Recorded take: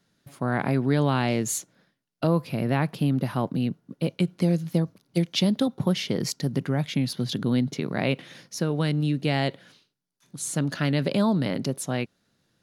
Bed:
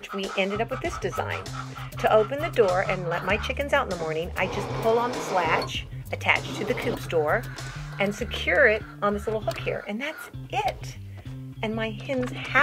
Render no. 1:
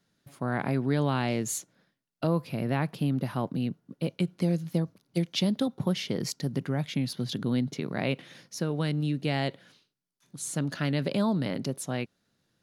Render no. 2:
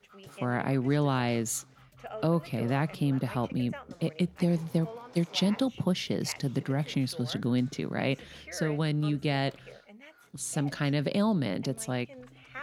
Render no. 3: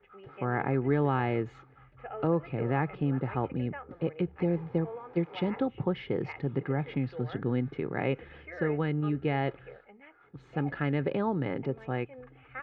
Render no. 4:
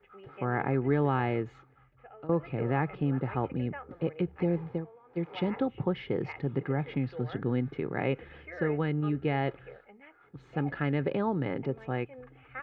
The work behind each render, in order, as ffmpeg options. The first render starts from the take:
ffmpeg -i in.wav -af "volume=-4dB" out.wav
ffmpeg -i in.wav -i bed.wav -filter_complex "[1:a]volume=-21dB[link_01];[0:a][link_01]amix=inputs=2:normalize=0" out.wav
ffmpeg -i in.wav -af "lowpass=frequency=2200:width=0.5412,lowpass=frequency=2200:width=1.3066,aecho=1:1:2.4:0.51" out.wav
ffmpeg -i in.wav -filter_complex "[0:a]asplit=4[link_01][link_02][link_03][link_04];[link_01]atrim=end=2.29,asetpts=PTS-STARTPTS,afade=type=out:start_time=1.26:duration=1.03:silence=0.141254[link_05];[link_02]atrim=start=2.29:end=4.95,asetpts=PTS-STARTPTS,afade=type=in:duration=0.004:curve=hsin:silence=0.141254,afade=type=out:start_time=2.4:duration=0.26:curve=qua:silence=0.188365[link_06];[link_03]atrim=start=4.95:end=5,asetpts=PTS-STARTPTS,volume=-14.5dB[link_07];[link_04]atrim=start=5,asetpts=PTS-STARTPTS,afade=type=in:duration=0.26:curve=qua:silence=0.188365[link_08];[link_05][link_06][link_07][link_08]concat=n=4:v=0:a=1" out.wav

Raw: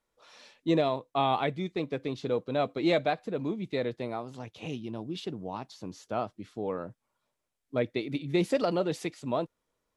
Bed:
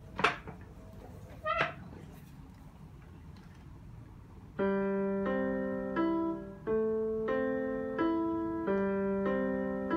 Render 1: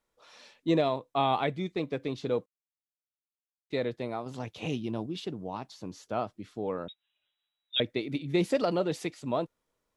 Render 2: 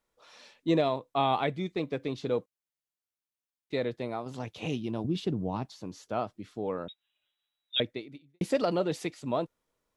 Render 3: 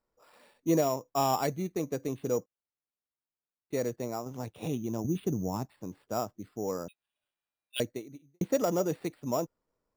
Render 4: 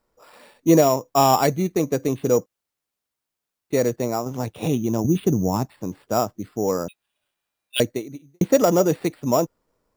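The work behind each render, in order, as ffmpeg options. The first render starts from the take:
ffmpeg -i in.wav -filter_complex "[0:a]asettb=1/sr,asplit=3[link_01][link_02][link_03];[link_01]atrim=end=6.884[link_04];[link_02]atrim=start=6.88:end=7.8,asetpts=PTS-STARTPTS,afade=type=in:duration=0.004:curve=qsin,afade=type=out:start_time=0.916:duration=0.004:curve=qsin,lowpass=frequency=3300:width_type=q:width=0.5098,lowpass=frequency=3300:width_type=q:width=0.6013,lowpass=frequency=3300:width_type=q:width=0.9,lowpass=frequency=3300:width_type=q:width=2.563,afreqshift=-3900[link_05];[link_03]atrim=start=7.796[link_06];[link_04][link_05]acrossfade=duration=0.004:curve1=hsin:curve2=qsin[link_07];[link_07][link_06]acrossfade=duration=0.004:curve1=qsin:curve2=hsin,asplit=5[link_08][link_09][link_10][link_11][link_12];[link_08]atrim=end=2.46,asetpts=PTS-STARTPTS,afade=type=out:start_time=2.456:duration=0.004:curve=hsin[link_13];[link_09]atrim=start=2.46:end=3.7,asetpts=PTS-STARTPTS,volume=0[link_14];[link_10]atrim=start=3.7:end=4.262,asetpts=PTS-STARTPTS,afade=type=in:duration=0.004:curve=hsin[link_15];[link_11]atrim=start=4.258:end=5.062,asetpts=PTS-STARTPTS,volume=4dB[link_16];[link_12]atrim=start=5.058[link_17];[link_13][link_14][link_15]concat=n=3:v=0:a=1[link_18];[link_18][link_16]acrossfade=duration=0.004:curve1=hsin:curve2=hsin[link_19];[link_19][link_17]acrossfade=duration=0.004:curve1=hsin:curve2=hsin" out.wav
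ffmpeg -i in.wav -filter_complex "[0:a]asettb=1/sr,asplit=3[link_01][link_02][link_03];[link_01]atrim=end=5.044[link_04];[link_02]atrim=start=5.04:end=5.66,asetpts=PTS-STARTPTS,afade=type=in:duration=0.004:curve=qsin,afade=type=out:start_time=0.616:duration=0.004:curve=qsin,lowshelf=frequency=300:gain=11.5[link_05];[link_03]atrim=start=5.656[link_06];[link_04][link_05]acrossfade=duration=0.004:curve1=hsin:curve2=qsin[link_07];[link_07][link_06]acrossfade=duration=0.004:curve1=qsin:curve2=hsin,asplit=2[link_08][link_09];[link_08]atrim=end=8.41,asetpts=PTS-STARTPTS,afade=type=out:start_time=7.79:duration=0.62:curve=qua[link_10];[link_09]atrim=start=8.41,asetpts=PTS-STARTPTS,afade=type=in:duration=0.004:curve=hsin[link_11];[link_10][link_11]concat=n=2:v=0:a=1" out.wav
ffmpeg -i in.wav -af "adynamicsmooth=sensitivity=0.5:basefreq=2000,acrusher=samples=7:mix=1:aa=0.000001" out.wav
ffmpeg -i in.wav -af "volume=11dB" out.wav

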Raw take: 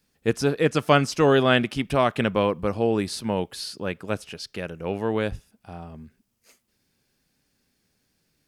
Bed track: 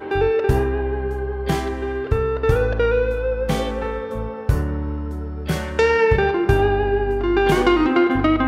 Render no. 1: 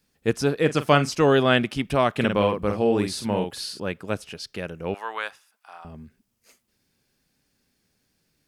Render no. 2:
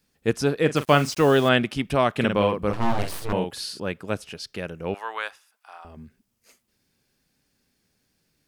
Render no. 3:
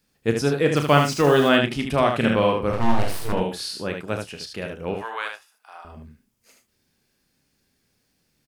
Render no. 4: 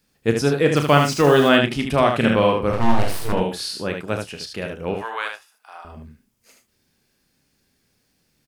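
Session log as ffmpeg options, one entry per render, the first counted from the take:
ffmpeg -i in.wav -filter_complex "[0:a]asettb=1/sr,asplit=3[link_01][link_02][link_03];[link_01]atrim=end=0.624[link_04];[link_02]atrim=start=0.62:end=1.15,asetpts=PTS-STARTPTS,afade=type=in:duration=0.004:curve=qsin,afade=type=out:start_time=0.526:duration=0.004:curve=qsin,asplit=2[link_05][link_06];[link_06]adelay=41,volume=-13dB[link_07];[link_05][link_07]amix=inputs=2:normalize=0,atrim=end_sample=23373[link_08];[link_03]atrim=start=1.146[link_09];[link_04][link_08]acrossfade=duration=0.004:curve1=hsin:curve2=qsin[link_10];[link_10][link_09]acrossfade=duration=0.004:curve1=qsin:curve2=hsin,asettb=1/sr,asplit=3[link_11][link_12][link_13];[link_11]atrim=end=2.164[link_14];[link_12]atrim=start=2.16:end=3.8,asetpts=PTS-STARTPTS,afade=type=in:duration=0.004:curve=qsin,afade=type=out:start_time=1.636:duration=0.004:curve=qsin,asplit=2[link_15][link_16];[link_16]adelay=48,volume=-5dB[link_17];[link_15][link_17]amix=inputs=2:normalize=0,atrim=end_sample=72324[link_18];[link_13]atrim=start=3.796[link_19];[link_14][link_18]acrossfade=duration=0.004:curve1=hsin:curve2=qsin[link_20];[link_20][link_19]acrossfade=duration=0.004:curve1=qsin:curve2=hsin,asettb=1/sr,asplit=3[link_21][link_22][link_23];[link_21]atrim=end=4.944[link_24];[link_22]atrim=start=4.94:end=5.85,asetpts=PTS-STARTPTS,afade=type=in:duration=0.004:curve=qsin,afade=type=out:start_time=0.906:duration=0.004:curve=qsin,highpass=frequency=1100:width_type=q:width=1.8[link_25];[link_23]atrim=start=5.846[link_26];[link_24][link_25]acrossfade=duration=0.004:curve1=hsin:curve2=qsin[link_27];[link_27][link_26]acrossfade=duration=0.004:curve1=qsin:curve2=hsin" out.wav
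ffmpeg -i in.wav -filter_complex "[0:a]asettb=1/sr,asplit=3[link_01][link_02][link_03];[link_01]atrim=end=0.764[link_04];[link_02]atrim=start=0.76:end=1.49,asetpts=PTS-STARTPTS,afade=type=in:duration=0.004:curve=qsin,afade=type=out:start_time=0.726:duration=0.004:curve=qsin,acrusher=bits=5:mix=0:aa=0.5[link_05];[link_03]atrim=start=1.486[link_06];[link_04][link_05]acrossfade=duration=0.004:curve1=hsin:curve2=qsin[link_07];[link_07][link_06]acrossfade=duration=0.004:curve1=qsin:curve2=hsin,asettb=1/sr,asplit=3[link_08][link_09][link_10];[link_08]atrim=end=2.734[link_11];[link_09]atrim=start=2.73:end=3.33,asetpts=PTS-STARTPTS,afade=type=in:duration=0.004:curve=qsin,afade=type=out:start_time=0.596:duration=0.004:curve=qsin,aeval=exprs='abs(val(0))':channel_layout=same[link_12];[link_10]atrim=start=3.326[link_13];[link_11][link_12]acrossfade=duration=0.004:curve1=hsin:curve2=qsin[link_14];[link_14][link_13]acrossfade=duration=0.004:curve1=qsin:curve2=hsin,asettb=1/sr,asplit=3[link_15][link_16][link_17];[link_15]atrim=end=4.994[link_18];[link_16]atrim=start=4.99:end=5.97,asetpts=PTS-STARTPTS,afade=type=in:duration=0.004:curve=qsin,afade=type=out:start_time=0.976:duration=0.004:curve=qsin,equalizer=frequency=160:width_type=o:width=0.84:gain=-14.5[link_19];[link_17]atrim=start=5.966[link_20];[link_18][link_19]acrossfade=duration=0.004:curve1=hsin:curve2=qsin[link_21];[link_21][link_20]acrossfade=duration=0.004:curve1=qsin:curve2=hsin" out.wav
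ffmpeg -i in.wav -filter_complex "[0:a]asplit=2[link_01][link_02];[link_02]adelay=27,volume=-13dB[link_03];[link_01][link_03]amix=inputs=2:normalize=0,aecho=1:1:35|75:0.316|0.531" out.wav
ffmpeg -i in.wav -af "volume=2.5dB,alimiter=limit=-3dB:level=0:latency=1" out.wav

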